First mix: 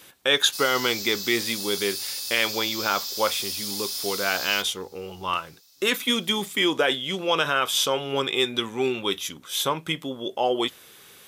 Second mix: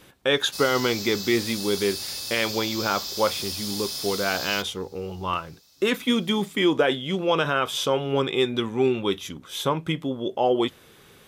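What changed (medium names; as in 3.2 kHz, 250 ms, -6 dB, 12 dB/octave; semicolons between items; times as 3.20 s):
background +5.5 dB; master: add tilt EQ -2.5 dB/octave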